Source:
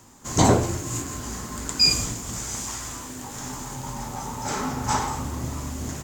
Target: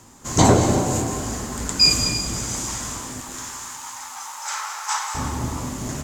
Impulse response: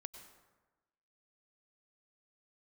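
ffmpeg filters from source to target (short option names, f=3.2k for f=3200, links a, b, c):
-filter_complex "[0:a]asettb=1/sr,asplit=3[a][b][c];[a]atrim=end=3.204[d];[b]atrim=start=3.2:end=5.15,asetpts=PTS-STARTPTS,afade=t=in:d=0.004:c=qsin,afade=t=out:st=1.946:d=0.004:c=qsin,highpass=f=1k:w=0.5412,highpass=f=1k:w=1.3066[e];[c]atrim=start=5.146[f];[d][e]acrossfade=d=0.004:c1=hsin:c2=qsin[g];[g][f]acrossfade=d=0.004:c1=qsin:c2=hsin[h];[1:a]atrim=start_sample=2205,asetrate=24696,aresample=44100[i];[h][i]afir=irnorm=-1:irlink=0,volume=5.5dB"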